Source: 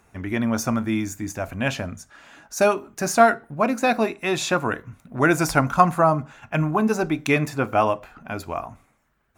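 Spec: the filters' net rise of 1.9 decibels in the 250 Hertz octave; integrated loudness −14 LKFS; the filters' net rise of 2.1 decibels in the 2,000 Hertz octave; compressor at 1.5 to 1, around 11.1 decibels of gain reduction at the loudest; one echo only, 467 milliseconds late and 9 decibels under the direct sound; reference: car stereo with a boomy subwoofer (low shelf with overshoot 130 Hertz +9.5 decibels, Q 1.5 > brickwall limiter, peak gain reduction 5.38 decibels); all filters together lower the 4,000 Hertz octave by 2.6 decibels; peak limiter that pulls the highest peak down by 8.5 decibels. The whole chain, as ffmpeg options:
ffmpeg -i in.wav -af "equalizer=frequency=250:width_type=o:gain=4.5,equalizer=frequency=2000:width_type=o:gain=4,equalizer=frequency=4000:width_type=o:gain=-4.5,acompressor=threshold=-40dB:ratio=1.5,alimiter=limit=-20dB:level=0:latency=1,lowshelf=frequency=130:width_type=q:width=1.5:gain=9.5,aecho=1:1:467:0.355,volume=19dB,alimiter=limit=-3.5dB:level=0:latency=1" out.wav

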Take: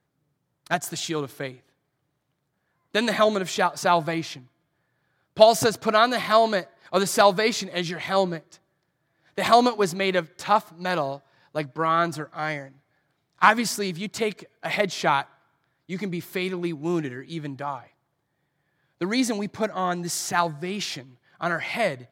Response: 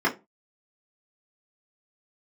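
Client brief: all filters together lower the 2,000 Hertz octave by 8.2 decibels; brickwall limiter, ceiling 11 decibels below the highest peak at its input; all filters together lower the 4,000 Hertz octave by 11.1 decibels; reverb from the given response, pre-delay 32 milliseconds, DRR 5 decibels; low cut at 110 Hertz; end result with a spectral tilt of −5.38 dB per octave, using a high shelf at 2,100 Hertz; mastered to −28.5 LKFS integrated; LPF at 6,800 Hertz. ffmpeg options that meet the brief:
-filter_complex "[0:a]highpass=110,lowpass=6800,equalizer=frequency=2000:width_type=o:gain=-7.5,highshelf=frequency=2100:gain=-4.5,equalizer=frequency=4000:width_type=o:gain=-6.5,alimiter=limit=-15dB:level=0:latency=1,asplit=2[link_01][link_02];[1:a]atrim=start_sample=2205,adelay=32[link_03];[link_02][link_03]afir=irnorm=-1:irlink=0,volume=-20dB[link_04];[link_01][link_04]amix=inputs=2:normalize=0,volume=-1dB"

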